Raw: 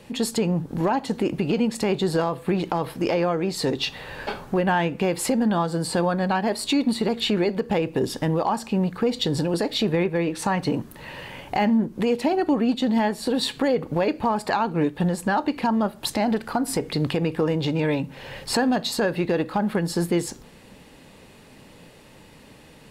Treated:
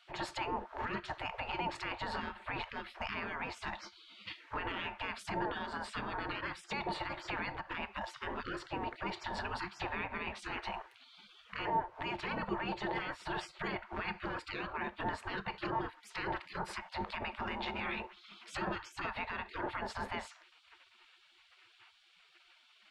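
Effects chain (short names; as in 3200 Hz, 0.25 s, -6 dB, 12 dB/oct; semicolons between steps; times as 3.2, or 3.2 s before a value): LPF 1800 Hz 12 dB/oct; spectral gate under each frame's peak -25 dB weak; limiter -34.5 dBFS, peak gain reduction 10 dB; small resonant body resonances 200/350/900 Hz, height 11 dB, ringing for 90 ms; gain +5.5 dB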